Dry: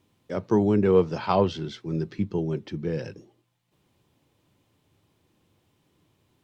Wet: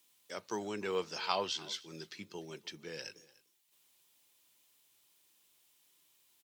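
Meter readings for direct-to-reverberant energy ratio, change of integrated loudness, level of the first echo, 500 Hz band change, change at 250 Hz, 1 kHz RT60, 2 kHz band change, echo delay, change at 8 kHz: no reverb, -14.0 dB, -21.5 dB, -15.5 dB, -21.0 dB, no reverb, -3.5 dB, 297 ms, no reading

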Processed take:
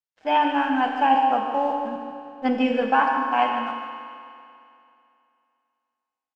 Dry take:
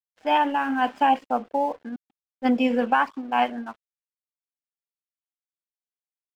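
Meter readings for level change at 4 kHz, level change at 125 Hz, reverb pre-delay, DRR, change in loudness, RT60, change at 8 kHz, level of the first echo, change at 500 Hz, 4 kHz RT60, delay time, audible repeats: +1.5 dB, no reading, 24 ms, 2.0 dB, +1.5 dB, 2.6 s, no reading, -10.0 dB, +1.5 dB, 2.5 s, 148 ms, 1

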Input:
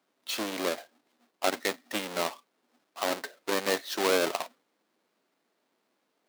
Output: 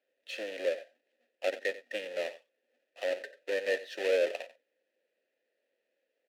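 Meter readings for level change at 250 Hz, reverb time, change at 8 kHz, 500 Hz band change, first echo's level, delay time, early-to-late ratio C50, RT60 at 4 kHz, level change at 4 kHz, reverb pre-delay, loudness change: -13.0 dB, no reverb, -16.0 dB, 0.0 dB, -16.0 dB, 91 ms, no reverb, no reverb, -9.5 dB, no reverb, -3.5 dB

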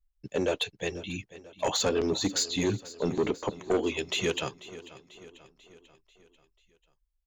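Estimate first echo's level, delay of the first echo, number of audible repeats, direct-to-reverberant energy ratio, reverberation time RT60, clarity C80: -17.5 dB, 491 ms, 4, no reverb, no reverb, no reverb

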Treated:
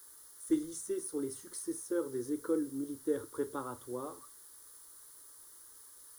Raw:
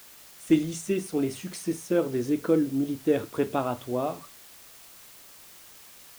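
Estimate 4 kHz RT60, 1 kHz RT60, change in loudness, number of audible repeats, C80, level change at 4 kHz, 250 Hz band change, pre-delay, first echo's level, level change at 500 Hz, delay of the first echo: no reverb, no reverb, -9.5 dB, no echo, no reverb, -13.5 dB, -10.0 dB, no reverb, no echo, -9.5 dB, no echo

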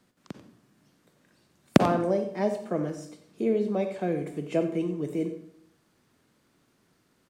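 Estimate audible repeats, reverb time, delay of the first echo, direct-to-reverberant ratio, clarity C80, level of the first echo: 1, 0.65 s, 91 ms, 7.5 dB, 10.5 dB, -14.0 dB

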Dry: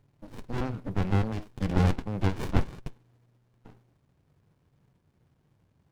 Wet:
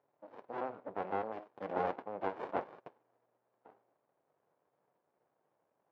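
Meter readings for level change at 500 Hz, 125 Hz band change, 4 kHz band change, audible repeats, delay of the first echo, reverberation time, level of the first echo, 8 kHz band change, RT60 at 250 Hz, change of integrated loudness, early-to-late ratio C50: -2.5 dB, -29.0 dB, -17.5 dB, no echo, no echo, no reverb, no echo, no reading, no reverb, -10.0 dB, no reverb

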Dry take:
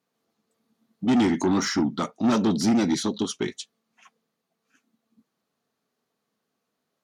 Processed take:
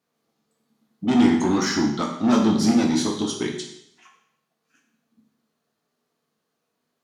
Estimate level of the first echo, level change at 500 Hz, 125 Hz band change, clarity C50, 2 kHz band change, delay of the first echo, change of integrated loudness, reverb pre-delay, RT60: no echo, +2.0 dB, +2.0 dB, 6.0 dB, +2.5 dB, no echo, +3.0 dB, 13 ms, 0.75 s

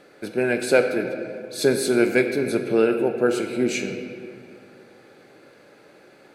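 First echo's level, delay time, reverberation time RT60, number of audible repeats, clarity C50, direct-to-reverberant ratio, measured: no echo, no echo, 2.4 s, no echo, 7.0 dB, 5.5 dB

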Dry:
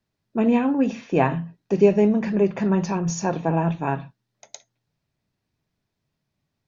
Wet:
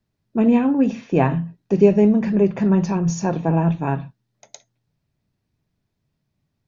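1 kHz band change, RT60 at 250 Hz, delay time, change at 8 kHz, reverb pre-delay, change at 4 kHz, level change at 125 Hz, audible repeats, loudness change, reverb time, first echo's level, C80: 0.0 dB, no reverb, no echo, no reading, no reverb, -1.0 dB, +5.0 dB, no echo, +3.0 dB, no reverb, no echo, no reverb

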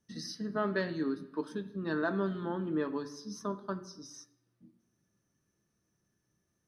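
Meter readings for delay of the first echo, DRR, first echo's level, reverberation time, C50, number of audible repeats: no echo, 8.0 dB, no echo, 0.85 s, 14.5 dB, no echo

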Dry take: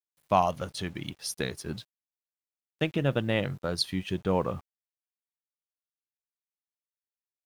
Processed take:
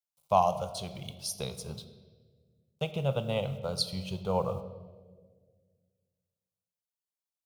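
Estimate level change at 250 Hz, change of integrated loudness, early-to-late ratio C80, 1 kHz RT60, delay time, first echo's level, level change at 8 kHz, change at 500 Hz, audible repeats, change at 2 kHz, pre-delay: -6.0 dB, -2.0 dB, 13.5 dB, 1.3 s, no echo, no echo, -0.5 dB, -1.0 dB, no echo, -10.0 dB, 6 ms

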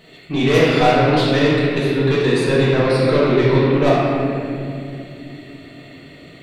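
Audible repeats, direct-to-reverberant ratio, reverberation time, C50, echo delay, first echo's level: no echo, -9.0 dB, 2.7 s, -3.0 dB, no echo, no echo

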